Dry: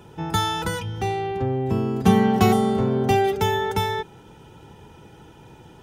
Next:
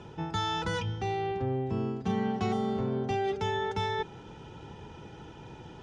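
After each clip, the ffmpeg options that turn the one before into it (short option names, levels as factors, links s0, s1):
-af "lowpass=f=6400:w=0.5412,lowpass=f=6400:w=1.3066,areverse,acompressor=threshold=0.0355:ratio=4,areverse"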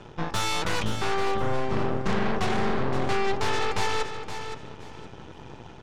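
-af "aeval=exprs='0.119*(cos(1*acos(clip(val(0)/0.119,-1,1)))-cos(1*PI/2))+0.0422*(cos(8*acos(clip(val(0)/0.119,-1,1)))-cos(8*PI/2))':c=same,aecho=1:1:519|1038|1557:0.355|0.0852|0.0204"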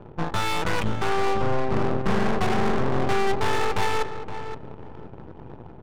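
-af "adynamicsmooth=sensitivity=4:basefreq=640,volume=1.41"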